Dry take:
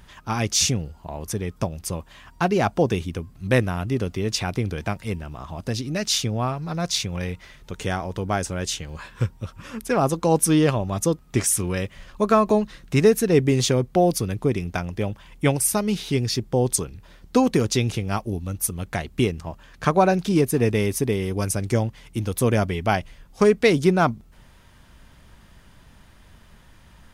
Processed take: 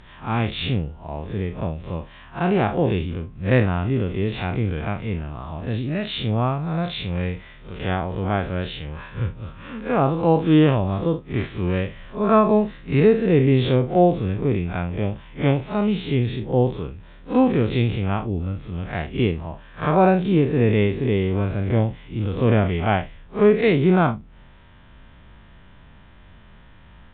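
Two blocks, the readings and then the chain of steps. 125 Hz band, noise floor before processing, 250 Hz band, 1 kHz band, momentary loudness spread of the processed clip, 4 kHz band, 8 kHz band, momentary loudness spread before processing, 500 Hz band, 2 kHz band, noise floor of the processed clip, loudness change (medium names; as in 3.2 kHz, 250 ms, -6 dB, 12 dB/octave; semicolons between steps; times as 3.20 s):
+3.0 dB, -51 dBFS, +2.5 dB, +1.0 dB, 13 LU, -4.5 dB, under -40 dB, 12 LU, +1.0 dB, 0.0 dB, -47 dBFS, +1.5 dB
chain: spectral blur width 98 ms; resampled via 8 kHz; distance through air 53 m; trim +4.5 dB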